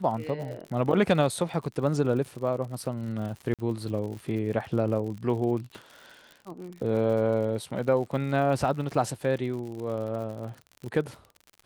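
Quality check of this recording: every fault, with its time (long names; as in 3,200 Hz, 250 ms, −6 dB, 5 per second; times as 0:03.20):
surface crackle 66 per second −36 dBFS
0:03.54–0:03.59: drop-out 47 ms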